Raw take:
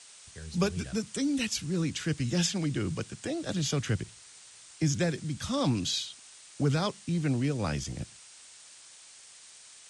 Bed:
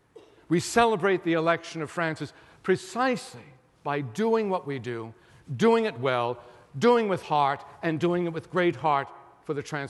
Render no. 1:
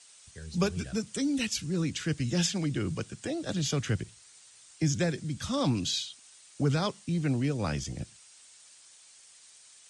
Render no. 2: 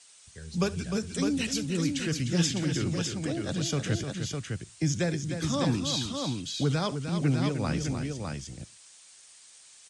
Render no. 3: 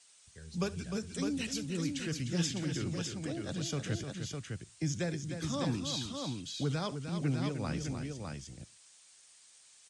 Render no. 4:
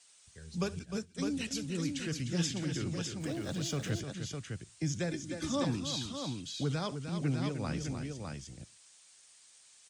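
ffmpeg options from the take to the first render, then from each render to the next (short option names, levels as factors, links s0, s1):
-af "afftdn=nr=6:nf=-53"
-af "aecho=1:1:68|304|606:0.112|0.398|0.562"
-af "volume=0.473"
-filter_complex "[0:a]asettb=1/sr,asplit=3[s0][s1][s2];[s0]atrim=end=0.794[s3];[s1]atrim=start=0.79:end=1.51,asetpts=PTS-STARTPTS,afade=t=in:d=0.004:c=qsin,afade=t=out:st=0.716:d=0.004:c=qsin,agate=range=0.0224:threshold=0.0158:ratio=3:release=100:detection=peak[s4];[s2]atrim=start=1.506[s5];[s3][s4]acrossfade=d=0.004:c1=hsin:c2=qsin[s6];[s6][s5]acrossfade=d=0.004:c1=qsin:c2=hsin,asettb=1/sr,asplit=3[s7][s8][s9];[s7]atrim=end=3.204[s10];[s8]atrim=start=3.2:end=4,asetpts=PTS-STARTPTS,afade=t=in:d=0.004:c=qsin,afade=t=out:st=0.796:d=0.004:c=qsin,aeval=exprs='val(0)+0.5*0.00422*sgn(val(0))':c=same[s11];[s9]atrim=start=3.996[s12];[s10][s11]acrossfade=d=0.004:c1=hsin:c2=qsin[s13];[s13][s12]acrossfade=d=0.004:c1=qsin:c2=hsin,asettb=1/sr,asplit=3[s14][s15][s16];[s14]atrim=end=5.114[s17];[s15]atrim=start=5.11:end=5.64,asetpts=PTS-STARTPTS,afade=t=in:d=0.004:c=qsin,afade=t=out:st=0.526:d=0.004:c=qsin,aecho=1:1:3.4:0.66,atrim=end_sample=23373[s18];[s16]atrim=start=5.636[s19];[s17][s18]acrossfade=d=0.004:c1=hsin:c2=qsin[s20];[s20][s19]acrossfade=d=0.004:c1=qsin:c2=hsin"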